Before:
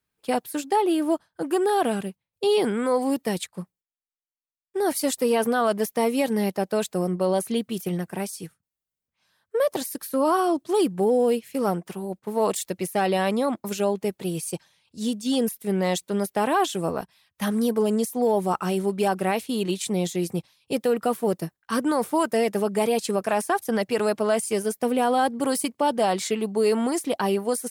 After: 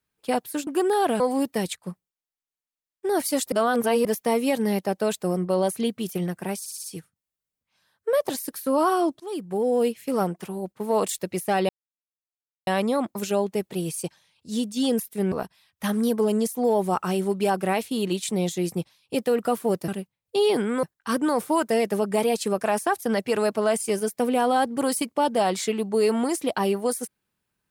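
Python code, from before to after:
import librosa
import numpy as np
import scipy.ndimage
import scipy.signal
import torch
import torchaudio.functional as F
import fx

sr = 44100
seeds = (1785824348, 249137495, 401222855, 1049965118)

y = fx.edit(x, sr, fx.cut(start_s=0.67, length_s=0.76),
    fx.move(start_s=1.96, length_s=0.95, to_s=21.46),
    fx.reverse_span(start_s=5.23, length_s=0.53),
    fx.stutter(start_s=8.31, slice_s=0.06, count=5),
    fx.fade_in_from(start_s=10.67, length_s=0.67, floor_db=-18.0),
    fx.insert_silence(at_s=13.16, length_s=0.98),
    fx.cut(start_s=15.81, length_s=1.09), tone=tone)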